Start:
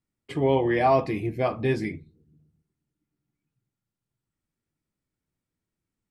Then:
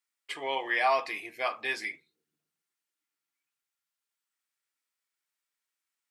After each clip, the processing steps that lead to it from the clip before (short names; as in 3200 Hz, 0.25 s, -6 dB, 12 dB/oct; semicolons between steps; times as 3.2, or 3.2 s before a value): HPF 1300 Hz 12 dB/oct; gain +4.5 dB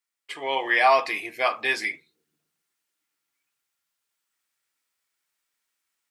AGC gain up to 7.5 dB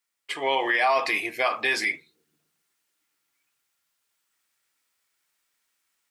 limiter -18 dBFS, peak gain reduction 9.5 dB; gain +4.5 dB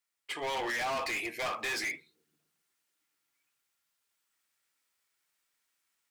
hard clip -26.5 dBFS, distortion -6 dB; gain -4.5 dB